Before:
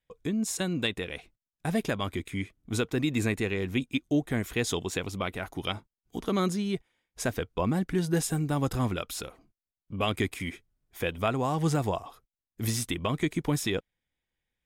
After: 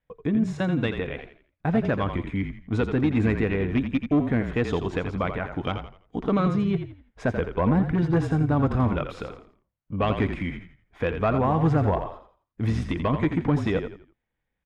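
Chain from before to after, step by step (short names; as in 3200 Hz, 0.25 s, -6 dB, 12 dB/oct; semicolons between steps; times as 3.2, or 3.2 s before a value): one-sided clip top -23 dBFS, bottom -20 dBFS; LPF 1800 Hz 12 dB/oct; notch 370 Hz, Q 12; on a send: frequency-shifting echo 84 ms, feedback 33%, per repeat -37 Hz, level -8 dB; on the sum: gain +6 dB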